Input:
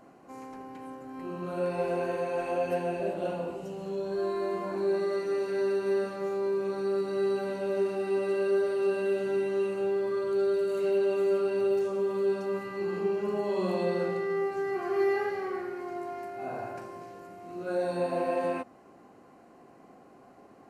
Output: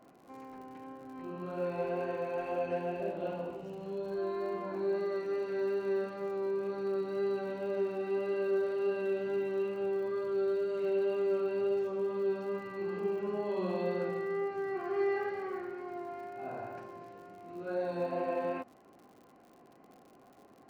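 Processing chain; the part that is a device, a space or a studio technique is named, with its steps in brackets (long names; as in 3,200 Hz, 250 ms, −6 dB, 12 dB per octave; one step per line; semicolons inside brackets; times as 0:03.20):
lo-fi chain (low-pass filter 3,900 Hz 12 dB per octave; tape wow and flutter 14 cents; surface crackle 95 per second −46 dBFS)
level −4.5 dB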